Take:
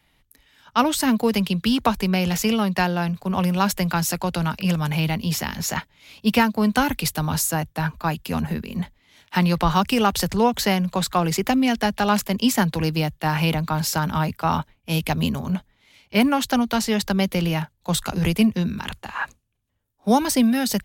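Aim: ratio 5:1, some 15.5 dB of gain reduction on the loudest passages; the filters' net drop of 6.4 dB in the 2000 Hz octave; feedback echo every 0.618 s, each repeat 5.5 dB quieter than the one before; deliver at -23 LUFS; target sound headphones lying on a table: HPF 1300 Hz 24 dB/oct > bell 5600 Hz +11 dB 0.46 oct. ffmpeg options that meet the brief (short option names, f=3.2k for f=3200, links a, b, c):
-af "equalizer=f=2k:t=o:g=-8.5,acompressor=threshold=-32dB:ratio=5,highpass=f=1.3k:w=0.5412,highpass=f=1.3k:w=1.3066,equalizer=f=5.6k:t=o:w=0.46:g=11,aecho=1:1:618|1236|1854|2472|3090|3708|4326:0.531|0.281|0.149|0.079|0.0419|0.0222|0.0118,volume=13.5dB"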